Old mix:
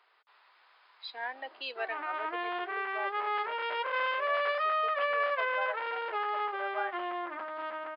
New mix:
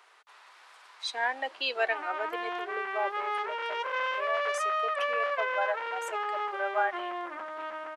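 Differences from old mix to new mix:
speech +8.0 dB; master: remove brick-wall FIR band-pass 180–5200 Hz

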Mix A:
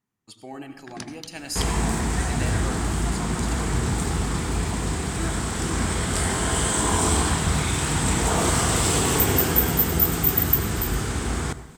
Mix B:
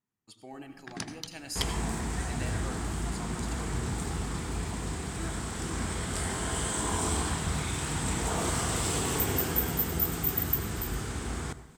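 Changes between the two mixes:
speech -7.0 dB; second sound -8.5 dB

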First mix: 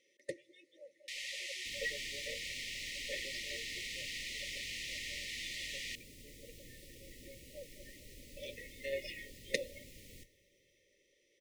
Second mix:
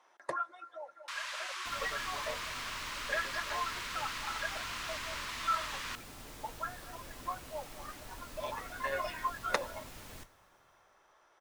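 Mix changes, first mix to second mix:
second sound +5.0 dB; master: remove brick-wall FIR band-stop 590–1800 Hz

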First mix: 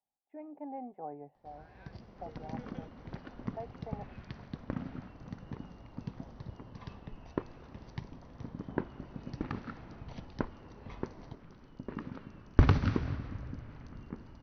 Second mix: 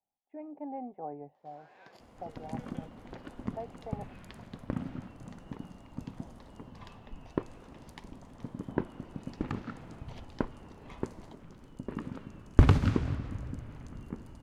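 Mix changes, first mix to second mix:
first sound: add band-pass 510–6000 Hz; master: remove rippled Chebyshev low-pass 6 kHz, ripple 3 dB

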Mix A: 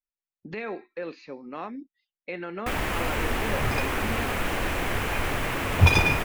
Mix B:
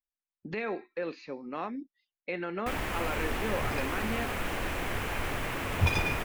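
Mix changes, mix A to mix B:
first sound -5.5 dB; second sound -9.0 dB

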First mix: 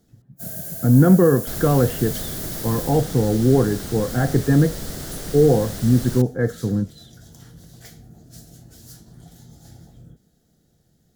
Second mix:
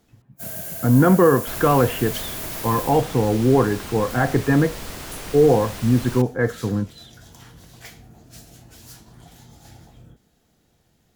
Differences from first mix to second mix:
second sound -3.5 dB; master: add fifteen-band graphic EQ 160 Hz -5 dB, 1 kHz +11 dB, 2.5 kHz +12 dB

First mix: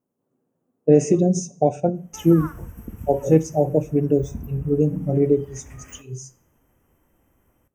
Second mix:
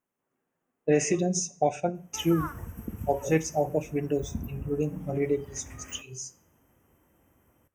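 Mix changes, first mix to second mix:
speech: add graphic EQ 125/250/500/2000/4000 Hz -10/-8/-7/+10/+4 dB; background: add high-pass 63 Hz

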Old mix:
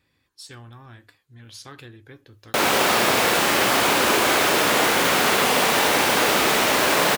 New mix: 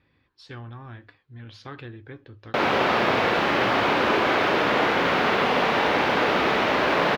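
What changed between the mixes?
speech +4.5 dB; master: add distance through air 290 m

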